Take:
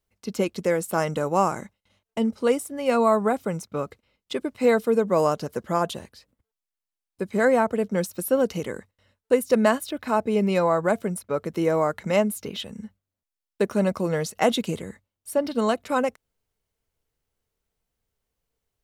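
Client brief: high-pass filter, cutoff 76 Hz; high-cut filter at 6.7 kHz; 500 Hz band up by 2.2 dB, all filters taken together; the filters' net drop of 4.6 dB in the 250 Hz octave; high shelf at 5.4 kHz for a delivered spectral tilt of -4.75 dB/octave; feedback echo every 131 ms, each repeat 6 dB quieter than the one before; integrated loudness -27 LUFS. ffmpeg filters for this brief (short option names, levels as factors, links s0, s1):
-af "highpass=76,lowpass=6700,equalizer=f=250:t=o:g=-7,equalizer=f=500:t=o:g=4,highshelf=f=5400:g=7,aecho=1:1:131|262|393|524|655|786:0.501|0.251|0.125|0.0626|0.0313|0.0157,volume=0.596"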